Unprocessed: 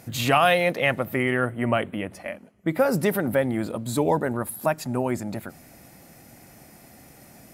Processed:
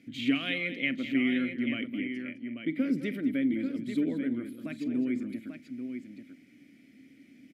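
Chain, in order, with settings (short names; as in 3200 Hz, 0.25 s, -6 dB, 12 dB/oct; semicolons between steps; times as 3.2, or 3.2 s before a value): vowel filter i; tapped delay 44/209/839 ms -19/-13/-8 dB; gain +4 dB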